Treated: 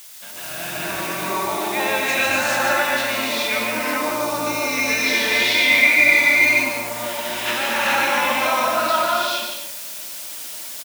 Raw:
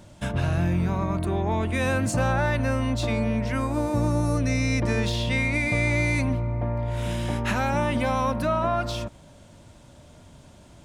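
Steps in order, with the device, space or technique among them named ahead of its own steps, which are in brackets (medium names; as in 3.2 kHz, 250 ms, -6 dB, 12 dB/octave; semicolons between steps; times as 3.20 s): dictaphone (band-pass 360–4200 Hz; level rider gain up to 11 dB; wow and flutter 45 cents; white noise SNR 20 dB); 3.98–4.67 s: band-stop 1.8 kHz, Q 6.1; tilt shelf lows -7.5 dB, about 1.4 kHz; loudspeakers at several distances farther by 50 m -6 dB, 83 m -11 dB; gated-style reverb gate 460 ms rising, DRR -7 dB; trim -9.5 dB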